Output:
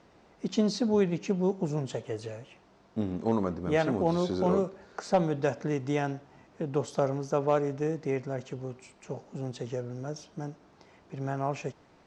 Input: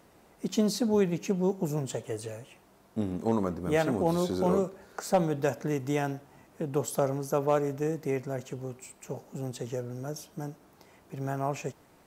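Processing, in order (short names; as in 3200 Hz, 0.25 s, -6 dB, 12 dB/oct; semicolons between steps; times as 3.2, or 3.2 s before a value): LPF 6000 Hz 24 dB/oct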